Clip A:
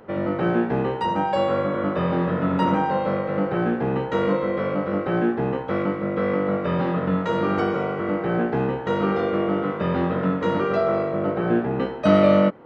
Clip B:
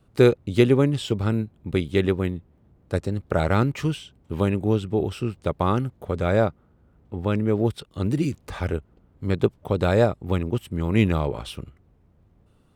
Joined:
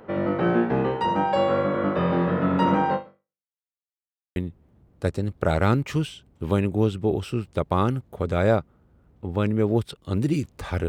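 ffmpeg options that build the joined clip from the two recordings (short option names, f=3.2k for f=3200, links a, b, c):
-filter_complex "[0:a]apad=whole_dur=10.88,atrim=end=10.88,asplit=2[a][b];[a]atrim=end=3.47,asetpts=PTS-STARTPTS,afade=t=out:st=2.94:d=0.53:c=exp[c];[b]atrim=start=3.47:end=4.36,asetpts=PTS-STARTPTS,volume=0[d];[1:a]atrim=start=2.25:end=8.77,asetpts=PTS-STARTPTS,afade=t=in:d=0.004:c=hsin[e];[c][d][e]concat=n=3:v=0:a=1"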